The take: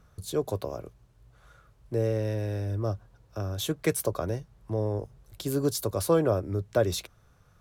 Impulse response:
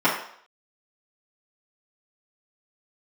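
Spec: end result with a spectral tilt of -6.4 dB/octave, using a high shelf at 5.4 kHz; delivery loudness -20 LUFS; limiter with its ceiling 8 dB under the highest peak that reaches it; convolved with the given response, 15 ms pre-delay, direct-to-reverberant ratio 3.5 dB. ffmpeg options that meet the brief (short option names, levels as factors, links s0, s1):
-filter_complex "[0:a]highshelf=f=5400:g=-7.5,alimiter=limit=0.106:level=0:latency=1,asplit=2[s0][s1];[1:a]atrim=start_sample=2205,adelay=15[s2];[s1][s2]afir=irnorm=-1:irlink=0,volume=0.075[s3];[s0][s3]amix=inputs=2:normalize=0,volume=3.76"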